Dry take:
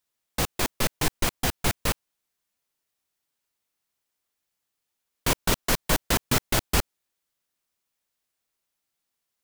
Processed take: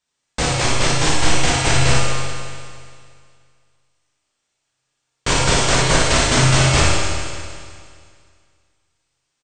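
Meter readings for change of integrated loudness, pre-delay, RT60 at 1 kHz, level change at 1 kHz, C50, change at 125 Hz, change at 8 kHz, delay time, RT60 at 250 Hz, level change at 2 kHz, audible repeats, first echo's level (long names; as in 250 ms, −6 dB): +9.5 dB, 7 ms, 2.1 s, +11.0 dB, −3.0 dB, +14.0 dB, +10.5 dB, 61 ms, 2.1 s, +11.5 dB, 1, −4.0 dB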